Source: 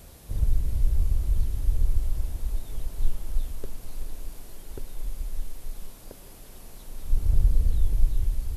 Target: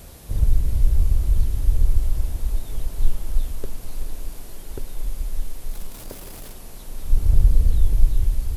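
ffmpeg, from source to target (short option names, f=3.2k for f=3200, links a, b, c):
-filter_complex "[0:a]asettb=1/sr,asplit=3[a][b][c];[a]atrim=end=5.704[d];[b]atrim=start=5.7:end=6.53,asetpts=PTS-STARTPTS,afade=t=in:d=0.004:c=qsin,afade=t=out:st=0.826:d=0.004:c=qsin,aeval=exprs='val(0)+0.5*0.00631*sgn(val(0))':c=same[e];[c]atrim=start=6.526[f];[d][e]acrossfade=d=0.004:c1=hsin:c2=qsin[g];[g][f]acrossfade=d=0.004:c1=qsin:c2=hsin,volume=5.5dB"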